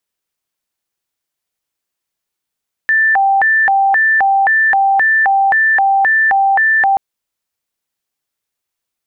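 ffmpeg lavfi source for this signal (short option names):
-f lavfi -i "aevalsrc='0.376*sin(2*PI*(1277*t+493/1.9*(0.5-abs(mod(1.9*t,1)-0.5))))':d=4.08:s=44100"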